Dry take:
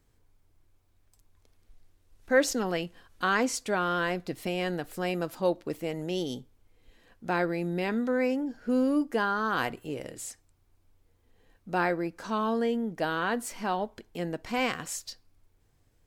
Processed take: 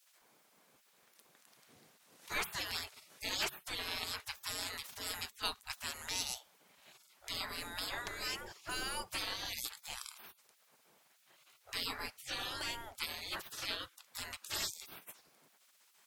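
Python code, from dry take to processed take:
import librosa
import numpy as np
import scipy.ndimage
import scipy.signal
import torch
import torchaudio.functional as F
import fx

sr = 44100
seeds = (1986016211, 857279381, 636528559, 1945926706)

y = fx.spec_gate(x, sr, threshold_db=-30, keep='weak')
y = y * 10.0 ** (12.0 / 20.0)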